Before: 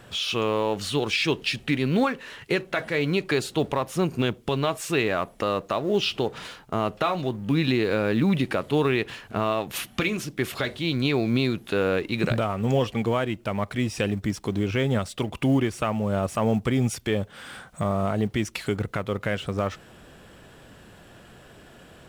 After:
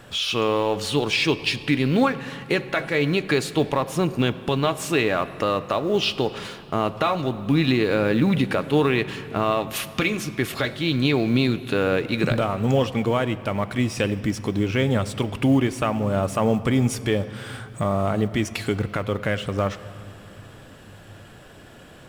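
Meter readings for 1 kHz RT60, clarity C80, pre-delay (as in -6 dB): 3.1 s, 15.0 dB, 3 ms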